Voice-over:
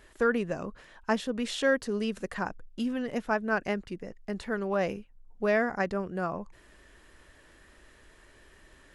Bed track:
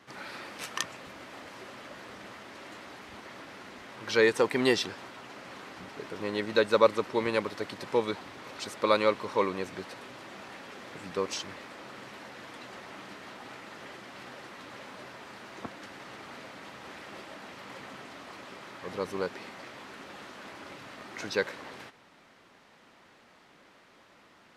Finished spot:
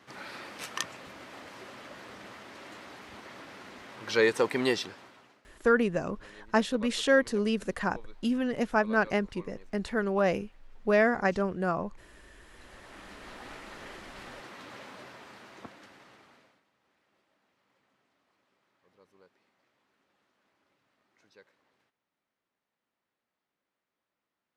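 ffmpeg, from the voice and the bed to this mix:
ffmpeg -i stem1.wav -i stem2.wav -filter_complex "[0:a]adelay=5450,volume=2.5dB[link_01];[1:a]volume=21dB,afade=type=out:start_time=4.53:duration=0.89:silence=0.0841395,afade=type=in:start_time=12.41:duration=1.03:silence=0.0794328,afade=type=out:start_time=14.72:duration=1.92:silence=0.0375837[link_02];[link_01][link_02]amix=inputs=2:normalize=0" out.wav

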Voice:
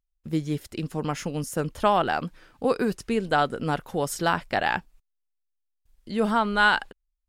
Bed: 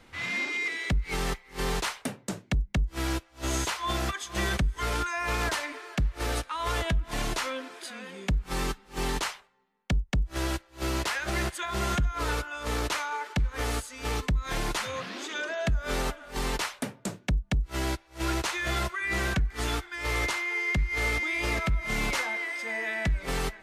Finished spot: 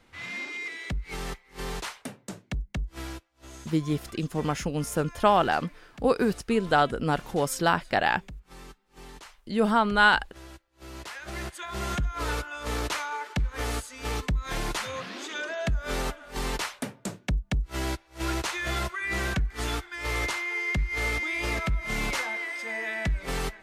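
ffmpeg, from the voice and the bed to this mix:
ffmpeg -i stem1.wav -i stem2.wav -filter_complex "[0:a]adelay=3400,volume=0.5dB[link_01];[1:a]volume=11dB,afade=type=out:start_time=2.91:duration=0.43:silence=0.266073,afade=type=in:start_time=10.79:duration=1.48:silence=0.158489[link_02];[link_01][link_02]amix=inputs=2:normalize=0" out.wav

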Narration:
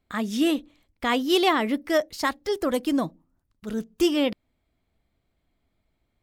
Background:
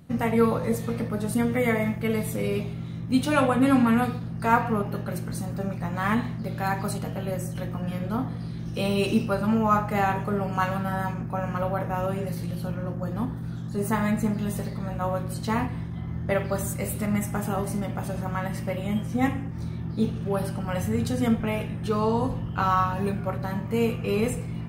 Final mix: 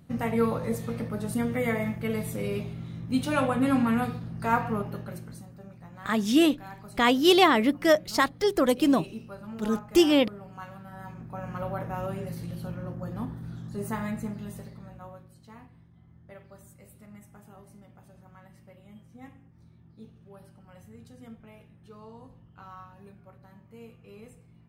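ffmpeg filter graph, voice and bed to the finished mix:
ffmpeg -i stem1.wav -i stem2.wav -filter_complex "[0:a]adelay=5950,volume=2dB[link_01];[1:a]volume=7.5dB,afade=type=out:start_time=4.77:duration=0.74:silence=0.223872,afade=type=in:start_time=10.91:duration=0.81:silence=0.266073,afade=type=out:start_time=13.63:duration=1.68:silence=0.125893[link_02];[link_01][link_02]amix=inputs=2:normalize=0" out.wav

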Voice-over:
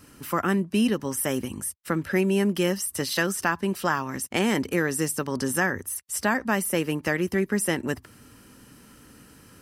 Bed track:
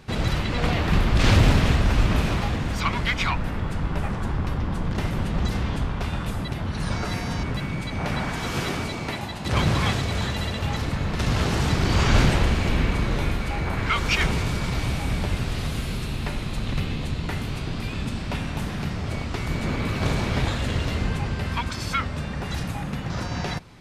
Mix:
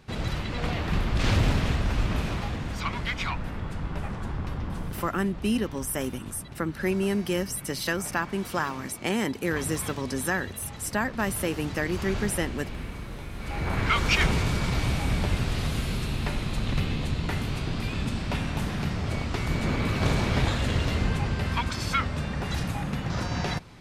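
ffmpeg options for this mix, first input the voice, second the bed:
ffmpeg -i stem1.wav -i stem2.wav -filter_complex "[0:a]adelay=4700,volume=-3.5dB[link_01];[1:a]volume=7.5dB,afade=type=out:start_time=4.79:duration=0.3:silence=0.398107,afade=type=in:start_time=13.32:duration=0.45:silence=0.211349[link_02];[link_01][link_02]amix=inputs=2:normalize=0" out.wav

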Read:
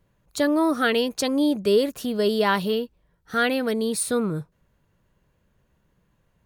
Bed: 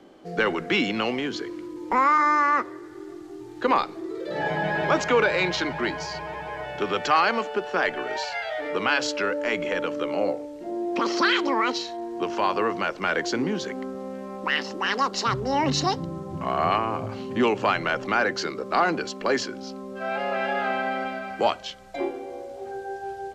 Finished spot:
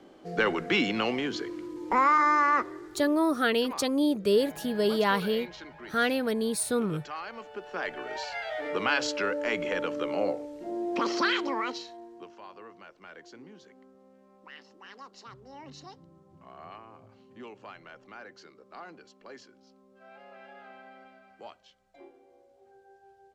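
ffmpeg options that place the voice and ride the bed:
ffmpeg -i stem1.wav -i stem2.wav -filter_complex "[0:a]adelay=2600,volume=-4dB[link_01];[1:a]volume=12.5dB,afade=type=out:start_time=2.79:duration=0.62:silence=0.158489,afade=type=in:start_time=7.31:duration=1.36:silence=0.177828,afade=type=out:start_time=11.03:duration=1.32:silence=0.1[link_02];[link_01][link_02]amix=inputs=2:normalize=0" out.wav

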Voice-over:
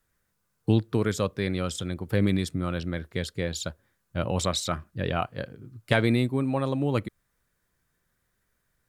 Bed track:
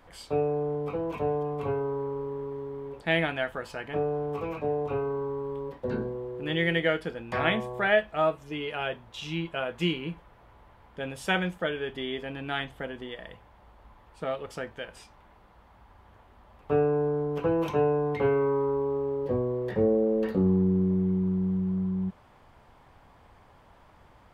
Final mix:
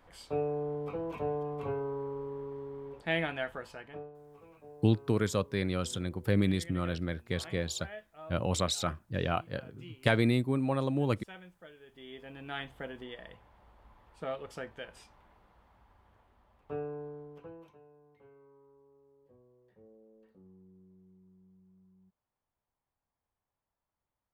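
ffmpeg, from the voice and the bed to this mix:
ffmpeg -i stem1.wav -i stem2.wav -filter_complex "[0:a]adelay=4150,volume=-3.5dB[link_01];[1:a]volume=12dB,afade=type=out:start_time=3.53:duration=0.59:silence=0.133352,afade=type=in:start_time=11.86:duration=0.93:silence=0.133352,afade=type=out:start_time=15.07:duration=2.72:silence=0.0334965[link_02];[link_01][link_02]amix=inputs=2:normalize=0" out.wav

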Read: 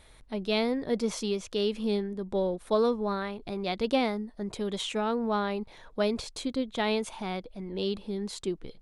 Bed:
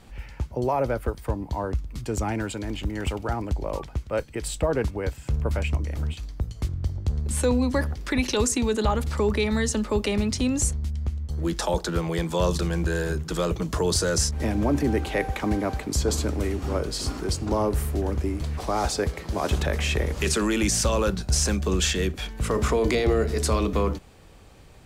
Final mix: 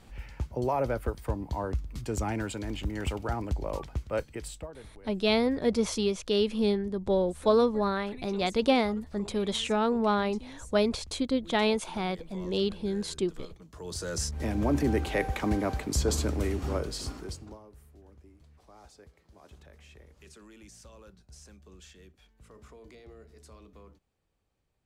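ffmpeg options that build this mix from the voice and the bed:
ffmpeg -i stem1.wav -i stem2.wav -filter_complex "[0:a]adelay=4750,volume=2.5dB[link_01];[1:a]volume=16.5dB,afade=type=out:start_time=4.19:duration=0.53:silence=0.105925,afade=type=in:start_time=13.73:duration=1.03:silence=0.0944061,afade=type=out:start_time=16.6:duration=1:silence=0.0501187[link_02];[link_01][link_02]amix=inputs=2:normalize=0" out.wav

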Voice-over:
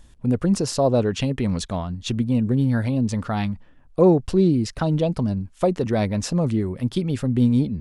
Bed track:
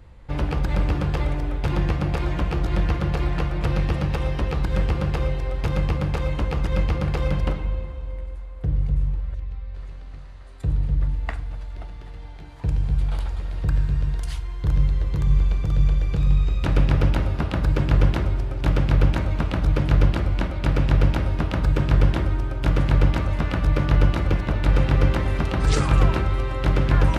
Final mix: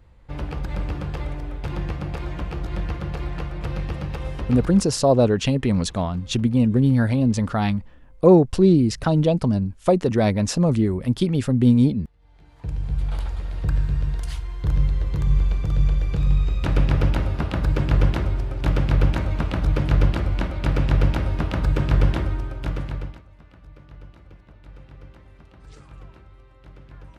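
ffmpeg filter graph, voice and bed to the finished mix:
ffmpeg -i stem1.wav -i stem2.wav -filter_complex "[0:a]adelay=4250,volume=2.5dB[link_01];[1:a]volume=17dB,afade=type=out:start_time=4.59:duration=0.27:silence=0.133352,afade=type=in:start_time=12.18:duration=1.03:silence=0.0749894,afade=type=out:start_time=22.12:duration=1.1:silence=0.0530884[link_02];[link_01][link_02]amix=inputs=2:normalize=0" out.wav

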